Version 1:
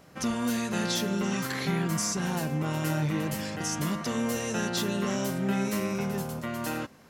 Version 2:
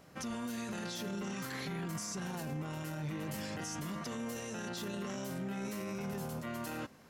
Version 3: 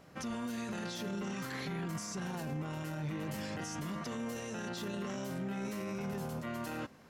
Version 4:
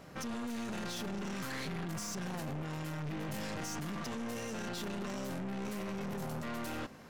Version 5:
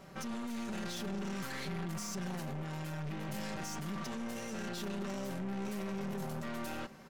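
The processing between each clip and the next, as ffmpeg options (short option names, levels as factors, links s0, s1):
-af "alimiter=level_in=1.58:limit=0.0631:level=0:latency=1:release=11,volume=0.631,volume=0.631"
-af "highshelf=f=6100:g=-6,volume=1.12"
-af "aeval=exprs='(tanh(158*val(0)+0.45)-tanh(0.45))/158':c=same,volume=2.24"
-af "aecho=1:1:5.2:0.46,volume=0.794"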